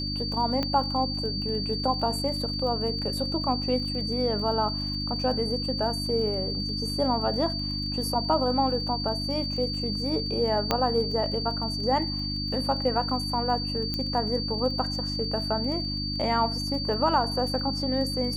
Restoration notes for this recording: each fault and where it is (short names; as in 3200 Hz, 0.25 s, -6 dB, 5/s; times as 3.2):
crackle 31/s -36 dBFS
hum 50 Hz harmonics 6 -33 dBFS
tone 4600 Hz -31 dBFS
0.63 pop -15 dBFS
10.71 pop -8 dBFS
13.94 pop -16 dBFS